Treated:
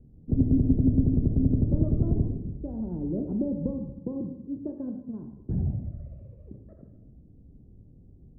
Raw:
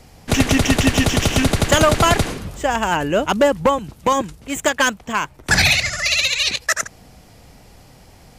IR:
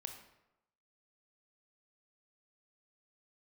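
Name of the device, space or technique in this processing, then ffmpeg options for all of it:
next room: -filter_complex "[0:a]lowpass=f=340:w=0.5412,lowpass=f=340:w=1.3066[a];[1:a]atrim=start_sample=2205[b];[a][b]afir=irnorm=-1:irlink=0,asettb=1/sr,asplit=3[c][d][e];[c]atrim=end=3.994[f];[d]atrim=start=3.99:end=5.23,asetpts=PTS-STARTPTS,afade=t=in:d=0.004:c=qsin,afade=t=out:st=1.236:d=0.004:c=qsin,highpass=100[g];[e]atrim=start=5.226[h];[f][g]acrossfade=d=0.004:c1=hsin:c2=qsin[i];[i][h]acrossfade=d=0.004:c1=qsin:c2=hsin,volume=-1dB"

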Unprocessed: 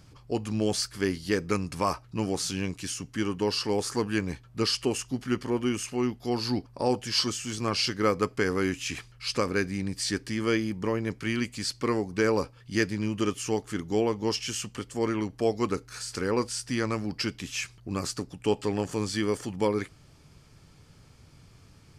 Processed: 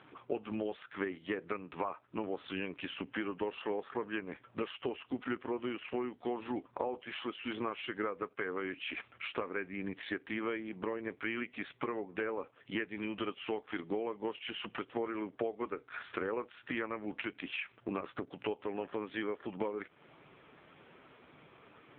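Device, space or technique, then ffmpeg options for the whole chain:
voicemail: -filter_complex "[0:a]asplit=3[a][b][c];[a]afade=t=out:st=12.89:d=0.02[d];[b]aemphasis=mode=production:type=75kf,afade=t=in:st=12.89:d=0.02,afade=t=out:st=13.9:d=0.02[e];[c]afade=t=in:st=13.9:d=0.02[f];[d][e][f]amix=inputs=3:normalize=0,highpass=370,lowpass=2.9k,acompressor=threshold=-42dB:ratio=10,volume=9.5dB" -ar 8000 -c:a libopencore_amrnb -b:a 5900

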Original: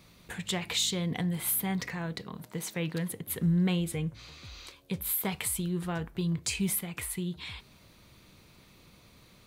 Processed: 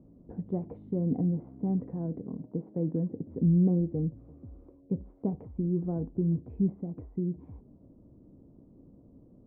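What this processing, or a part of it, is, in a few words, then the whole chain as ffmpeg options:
under water: -af "lowpass=f=610:w=0.5412,lowpass=f=610:w=1.3066,equalizer=f=270:t=o:w=0.51:g=11,volume=1dB"

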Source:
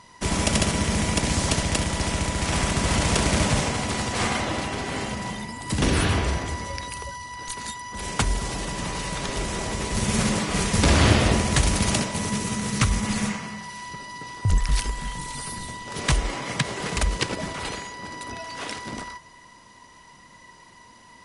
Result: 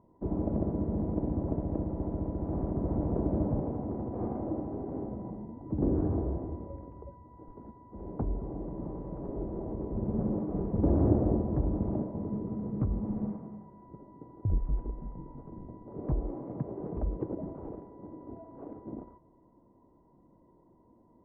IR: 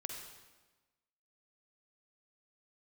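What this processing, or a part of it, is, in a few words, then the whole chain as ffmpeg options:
under water: -af "lowpass=f=720:w=0.5412,lowpass=f=720:w=1.3066,equalizer=f=320:t=o:w=0.57:g=8.5,volume=-8dB"

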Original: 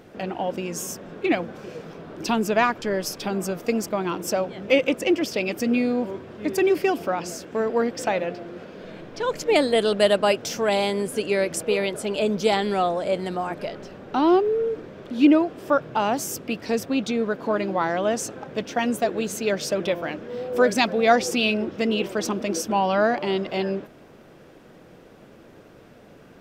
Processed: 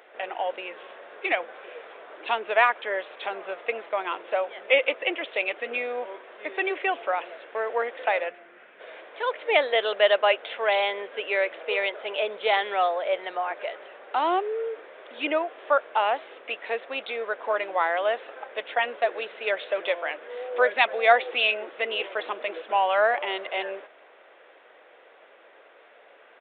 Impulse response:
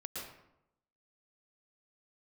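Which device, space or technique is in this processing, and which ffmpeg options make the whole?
musical greeting card: -filter_complex "[0:a]asplit=3[a][b][c];[a]afade=t=out:st=8.28:d=0.02[d];[b]equalizer=f=125:t=o:w=1:g=12,equalizer=f=500:t=o:w=1:g=-12,equalizer=f=1k:t=o:w=1:g=-6,equalizer=f=4k:t=o:w=1:g=-11,afade=t=in:st=8.28:d=0.02,afade=t=out:st=8.79:d=0.02[e];[c]afade=t=in:st=8.79:d=0.02[f];[d][e][f]amix=inputs=3:normalize=0,aresample=8000,aresample=44100,highpass=f=520:w=0.5412,highpass=f=520:w=1.3066,equalizer=f=2k:t=o:w=0.54:g=5"

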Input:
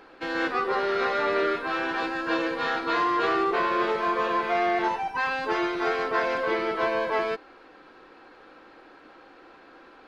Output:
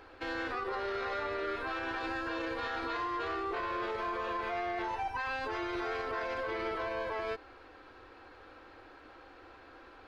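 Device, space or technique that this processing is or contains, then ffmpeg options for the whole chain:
car stereo with a boomy subwoofer: -af "lowshelf=f=120:t=q:w=3:g=9,alimiter=level_in=1dB:limit=-24dB:level=0:latency=1:release=62,volume=-1dB,volume=-3dB"

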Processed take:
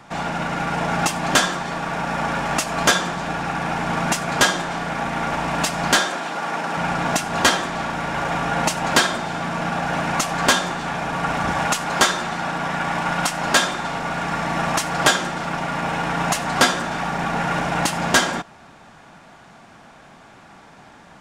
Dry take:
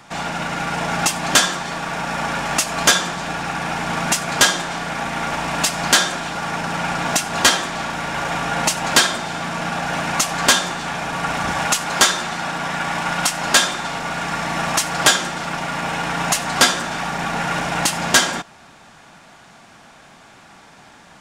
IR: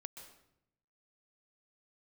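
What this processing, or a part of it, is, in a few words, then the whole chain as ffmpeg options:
behind a face mask: -filter_complex "[0:a]highshelf=f=2.2k:g=-8,asettb=1/sr,asplit=3[a][b][c];[a]atrim=end=6.004[d];[b]atrim=start=6:end=6.77,asetpts=PTS-STARTPTS,afade=t=in:d=0.004:c=qsin,afade=t=out:st=0.766:d=0.004:c=qsin,highpass=260[e];[c]atrim=start=6.766[f];[d][e]acrossfade=d=0.004:c1=hsin:c2=qsin[g];[g][f]acrossfade=d=0.004:c1=qsin:c2=hsin,volume=1.5dB"

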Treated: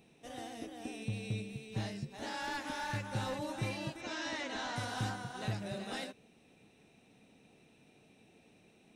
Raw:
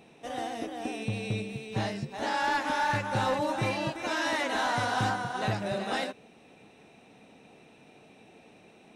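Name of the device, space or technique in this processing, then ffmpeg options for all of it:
smiley-face EQ: -filter_complex "[0:a]lowshelf=f=120:g=5,equalizer=f=920:t=o:w=2.1:g=-6,highshelf=f=7.7k:g=5,asettb=1/sr,asplit=3[a][b][c];[a]atrim=end=4.014[d];[b]atrim=start=4.01:end=4.76,asetpts=PTS-STARTPTS,afade=t=in:d=0.004:c=qsin,afade=t=out:st=0.746:d=0.004:c=qsin,lowpass=f=7.1k:w=0.5412,lowpass=f=7.1k:w=1.3066[e];[c]atrim=start=4.756[f];[d][e]acrossfade=d=0.004:c1=hsin:c2=qsin[g];[g][f]acrossfade=d=0.004:c1=qsin:c2=hsin,volume=-7dB"

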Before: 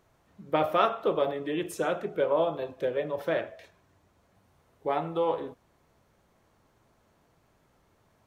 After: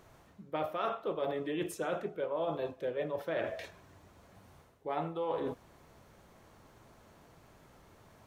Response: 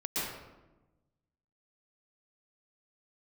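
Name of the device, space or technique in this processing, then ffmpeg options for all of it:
compression on the reversed sound: -af "areverse,acompressor=threshold=-40dB:ratio=6,areverse,volume=7dB"

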